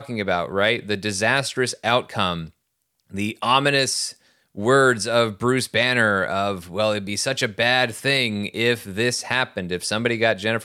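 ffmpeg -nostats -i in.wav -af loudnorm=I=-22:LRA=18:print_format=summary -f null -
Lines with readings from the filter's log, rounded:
Input Integrated:    -21.1 LUFS
Input True Peak:      -4.3 dBTP
Input LRA:             1.7 LU
Input Threshold:     -31.3 LUFS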